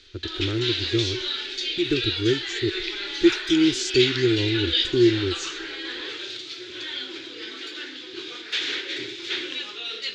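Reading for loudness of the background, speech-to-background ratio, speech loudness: -27.5 LUFS, 3.5 dB, -24.0 LUFS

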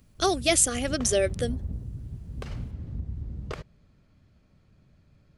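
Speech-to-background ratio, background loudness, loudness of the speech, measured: 13.0 dB, -37.5 LUFS, -24.5 LUFS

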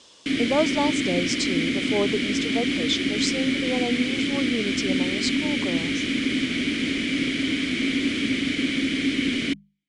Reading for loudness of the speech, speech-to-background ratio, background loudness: -28.0 LUFS, -3.5 dB, -24.5 LUFS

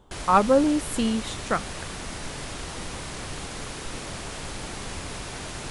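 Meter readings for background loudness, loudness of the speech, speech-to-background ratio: -35.0 LUFS, -23.5 LUFS, 11.5 dB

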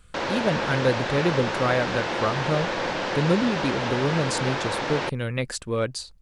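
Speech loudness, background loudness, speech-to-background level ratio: -26.5 LUFS, -27.5 LUFS, 1.0 dB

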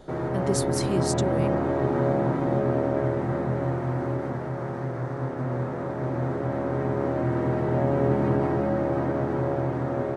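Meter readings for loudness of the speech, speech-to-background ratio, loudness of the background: -31.0 LUFS, -4.5 dB, -26.5 LUFS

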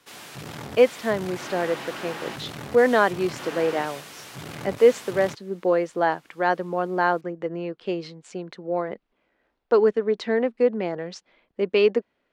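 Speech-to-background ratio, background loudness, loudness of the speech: 13.0 dB, -37.0 LUFS, -24.0 LUFS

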